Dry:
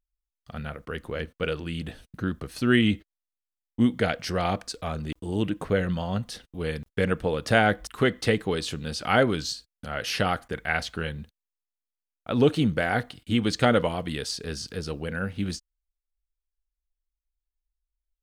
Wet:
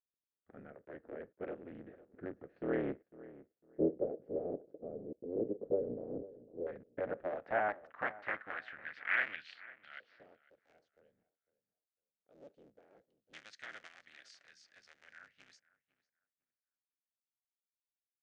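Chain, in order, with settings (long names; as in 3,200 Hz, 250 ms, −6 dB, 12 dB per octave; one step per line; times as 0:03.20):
sub-harmonics by changed cycles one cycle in 3, inverted
auto-filter low-pass square 0.15 Hz 490–1,800 Hz
graphic EQ with 15 bands 400 Hz −5 dB, 1,000 Hz −10 dB, 10,000 Hz +5 dB
band-pass filter sweep 420 Hz → 6,500 Hz, 0:06.83–0:10.68
on a send: feedback echo with a low-pass in the loop 502 ms, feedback 25%, low-pass 1,800 Hz, level −18 dB
on the sum: level −5.5 dB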